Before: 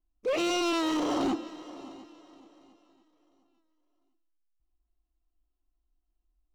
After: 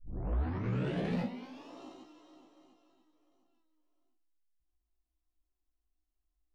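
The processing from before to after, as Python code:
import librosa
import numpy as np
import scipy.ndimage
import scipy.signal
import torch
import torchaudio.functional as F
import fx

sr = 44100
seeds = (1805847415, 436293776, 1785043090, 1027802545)

y = fx.tape_start_head(x, sr, length_s=1.81)
y = fx.comb_fb(y, sr, f0_hz=62.0, decay_s=0.17, harmonics='all', damping=0.0, mix_pct=100)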